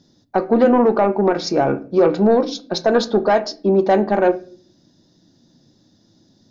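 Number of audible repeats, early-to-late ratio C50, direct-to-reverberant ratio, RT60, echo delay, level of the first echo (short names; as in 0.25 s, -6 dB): none, 17.0 dB, 10.5 dB, 0.45 s, none, none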